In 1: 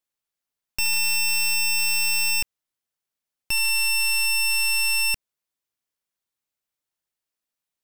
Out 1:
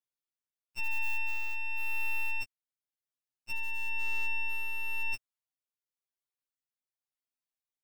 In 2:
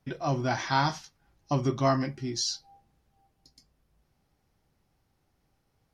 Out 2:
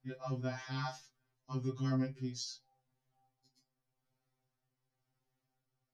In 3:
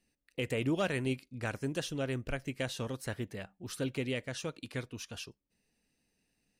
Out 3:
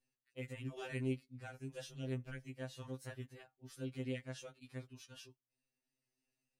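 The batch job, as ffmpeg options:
-af "tremolo=f=0.95:d=0.33,afftfilt=real='re*2.45*eq(mod(b,6),0)':imag='im*2.45*eq(mod(b,6),0)':win_size=2048:overlap=0.75,volume=-8.5dB"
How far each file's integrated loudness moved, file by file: −13.5, −10.0, −9.0 LU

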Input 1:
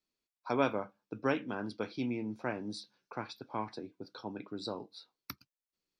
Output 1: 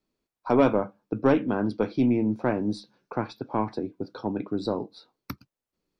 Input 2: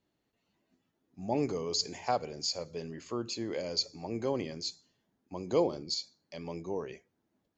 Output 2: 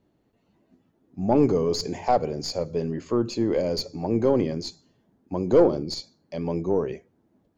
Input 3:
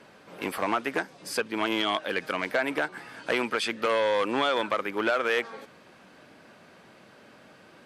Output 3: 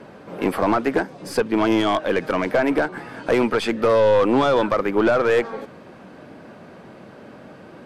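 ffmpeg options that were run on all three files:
-af "aeval=exprs='0.282*(cos(1*acos(clip(val(0)/0.282,-1,1)))-cos(1*PI/2))+0.0708*(cos(5*acos(clip(val(0)/0.282,-1,1)))-cos(5*PI/2))+0.0141*(cos(8*acos(clip(val(0)/0.282,-1,1)))-cos(8*PI/2))':channel_layout=same,tiltshelf=frequency=1300:gain=7"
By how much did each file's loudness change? +11.0, +9.5, +8.0 LU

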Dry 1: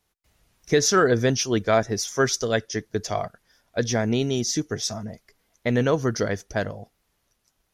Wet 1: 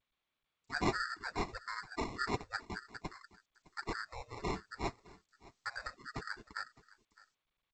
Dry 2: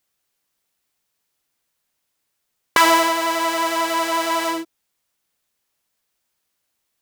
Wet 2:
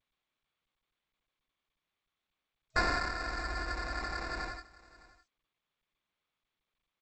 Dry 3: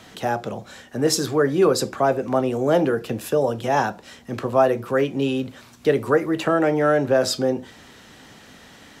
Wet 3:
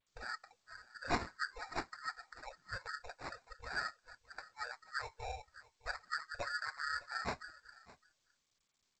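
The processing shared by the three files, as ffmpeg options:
-filter_complex "[0:a]afftfilt=real='real(if(lt(b,272),68*(eq(floor(b/68),0)*2+eq(floor(b/68),1)*0+eq(floor(b/68),2)*3+eq(floor(b/68),3)*1)+mod(b,68),b),0)':imag='imag(if(lt(b,272),68*(eq(floor(b/68),0)*2+eq(floor(b/68),1)*0+eq(floor(b/68),2)*3+eq(floor(b/68),3)*1)+mod(b,68),b),0)':win_size=2048:overlap=0.75,agate=range=-27dB:threshold=-42dB:ratio=16:detection=peak,afftfilt=real='re*(1-between(b*sr/4096,120,3800))':imag='im*(1-between(b*sr/4096,120,3800))':win_size=4096:overlap=0.75,afftdn=noise_reduction=22:noise_floor=-41,equalizer=frequency=87:width=1.1:gain=3.5,asplit=2[link_01][link_02];[link_02]acompressor=threshold=-42dB:ratio=8,volume=-0.5dB[link_03];[link_01][link_03]amix=inputs=2:normalize=0,flanger=delay=3:depth=4.7:regen=24:speed=0.53:shape=sinusoidal,acrusher=samples=14:mix=1:aa=0.000001,lowshelf=frequency=360:gain=4,aecho=1:1:611:0.0891,volume=-6.5dB" -ar 16000 -c:a g722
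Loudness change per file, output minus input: −17.0, −16.5, −21.5 LU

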